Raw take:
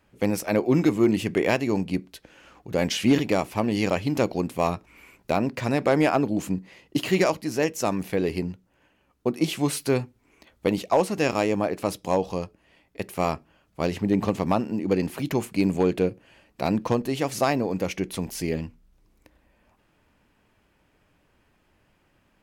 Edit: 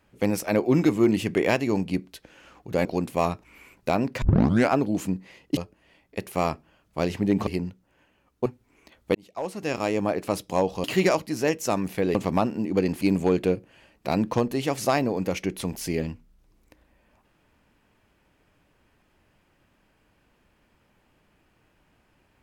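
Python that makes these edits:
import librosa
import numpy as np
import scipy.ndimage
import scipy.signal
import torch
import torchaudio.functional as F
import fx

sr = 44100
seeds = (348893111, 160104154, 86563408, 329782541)

y = fx.edit(x, sr, fx.cut(start_s=2.85, length_s=1.42),
    fx.tape_start(start_s=5.64, length_s=0.48),
    fx.swap(start_s=6.99, length_s=1.31, other_s=12.39, other_length_s=1.9),
    fx.cut(start_s=9.29, length_s=0.72),
    fx.fade_in_span(start_s=10.7, length_s=0.96),
    fx.cut(start_s=15.15, length_s=0.4), tone=tone)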